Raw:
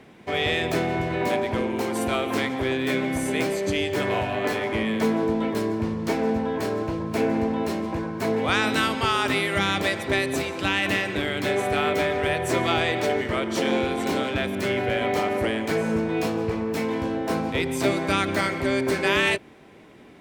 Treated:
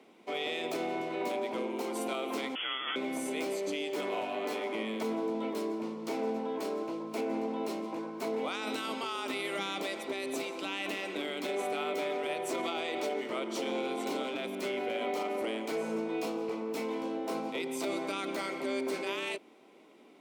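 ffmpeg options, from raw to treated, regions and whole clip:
-filter_complex "[0:a]asettb=1/sr,asplit=3[s0][s1][s2];[s0]atrim=end=2.554[s3];[s1]atrim=start=2.55:end=2.96,asetpts=PTS-STARTPTS,afade=t=in:d=0.004:c=qsin,afade=t=out:st=0.406:d=0.004:c=qsin,highpass=690,acontrast=35,lowpass=f=3100:t=q:w=0.5098,lowpass=f=3100:t=q:w=0.6013,lowpass=f=3100:t=q:w=0.9,lowpass=f=3100:t=q:w=2.563,afreqshift=-3700[s4];[s2]atrim=start=2.956[s5];[s3][s4]acrossfade=d=0.004:c1=hsin:c2=qsin[s6];[s6][s5]acrossfade=d=0.004:c1=qsin:c2=hsin,highpass=f=240:w=0.5412,highpass=f=240:w=1.3066,equalizer=f=1700:w=5.2:g=-12.5,alimiter=limit=0.133:level=0:latency=1:release=27,volume=0.422"

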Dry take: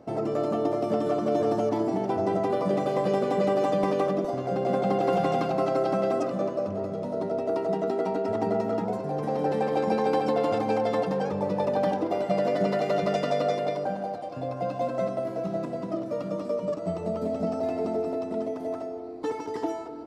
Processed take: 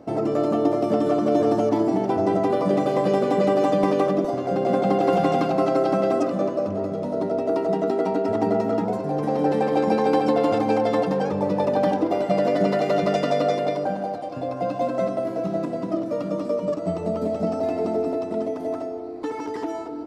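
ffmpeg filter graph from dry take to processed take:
-filter_complex "[0:a]asettb=1/sr,asplit=3[s0][s1][s2];[s0]atrim=end=19.154[s3];[s1]atrim=start=19.15:end=19.75,asetpts=PTS-STARTPTS,afade=t=in:d=0.004:c=qsin,afade=t=out:st=0.596:d=0.004:c=qsin,equalizer=f=1600:w=1:g=3.5,acompressor=threshold=0.0282:ratio=2.5:attack=3.2:release=140:knee=1:detection=peak,asoftclip=type=hard:threshold=0.0473[s4];[s2]atrim=start=19.746[s5];[s3][s4]acrossfade=d=0.004:c1=hsin:c2=qsin[s6];[s6][s5]acrossfade=d=0.004:c1=qsin:c2=hsin,equalizer=f=290:w=5.2:g=5.5,bandreject=f=131.6:t=h:w=4,bandreject=f=263.2:t=h:w=4,volume=1.58"

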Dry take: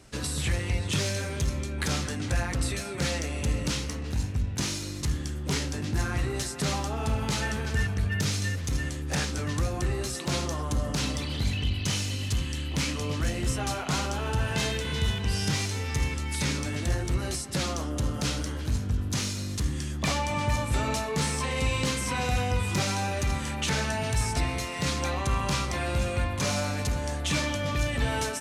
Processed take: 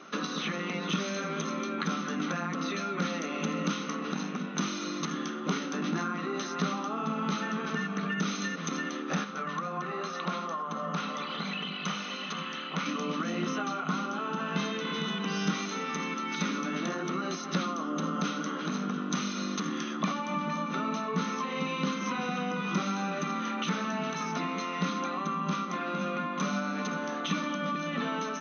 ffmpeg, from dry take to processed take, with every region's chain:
-filter_complex "[0:a]asettb=1/sr,asplit=3[s0][s1][s2];[s0]atrim=end=9.244[s3];[s1]atrim=start=9.24:end=12.86,asetpts=PTS-STARTPTS,afade=t=in:d=0.004:c=qsin,afade=t=out:st=3.616:d=0.004:c=qsin,lowpass=f=2300:p=1,equalizer=f=290:w=1.7:g=-12.5[s4];[s2]atrim=start=12.856[s5];[s3][s4]acrossfade=d=0.004:c1=hsin:c2=qsin[s6];[s6][s5]acrossfade=d=0.004:c1=qsin:c2=hsin,afftfilt=real='re*between(b*sr/4096,160,6400)':imag='im*between(b*sr/4096,160,6400)':win_size=4096:overlap=0.75,superequalizer=10b=3.55:14b=0.355,acrossover=split=240[s7][s8];[s8]acompressor=threshold=0.0141:ratio=10[s9];[s7][s9]amix=inputs=2:normalize=0,volume=1.88"

